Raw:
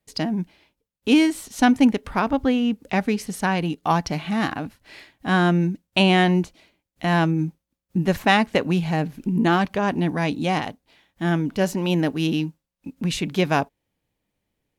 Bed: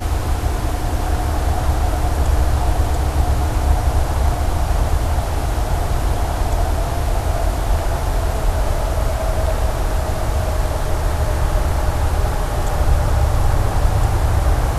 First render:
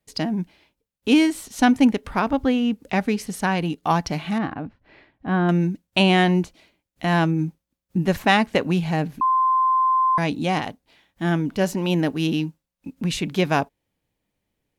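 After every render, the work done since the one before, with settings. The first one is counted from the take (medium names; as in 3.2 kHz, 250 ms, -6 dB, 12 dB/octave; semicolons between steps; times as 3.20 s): 4.38–5.49 s: tape spacing loss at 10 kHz 39 dB; 9.21–10.18 s: bleep 1.04 kHz -15.5 dBFS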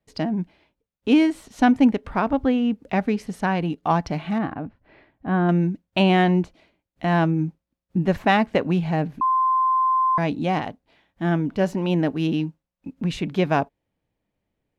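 low-pass 2 kHz 6 dB/octave; peaking EQ 650 Hz +2.5 dB 0.26 oct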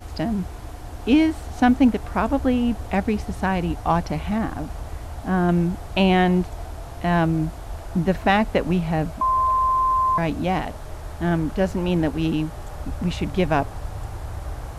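add bed -15.5 dB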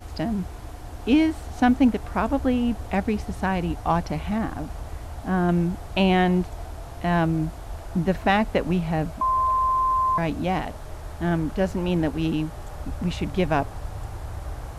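trim -2 dB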